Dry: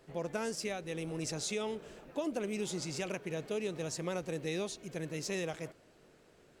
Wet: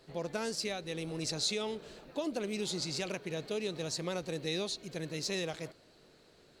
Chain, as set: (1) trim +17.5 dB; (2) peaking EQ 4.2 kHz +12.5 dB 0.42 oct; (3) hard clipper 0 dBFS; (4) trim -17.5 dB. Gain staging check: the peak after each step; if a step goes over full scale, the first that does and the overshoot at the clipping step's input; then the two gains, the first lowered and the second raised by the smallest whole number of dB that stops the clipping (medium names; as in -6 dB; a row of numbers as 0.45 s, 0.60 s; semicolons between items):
-6.5 dBFS, -2.0 dBFS, -2.0 dBFS, -19.5 dBFS; nothing clips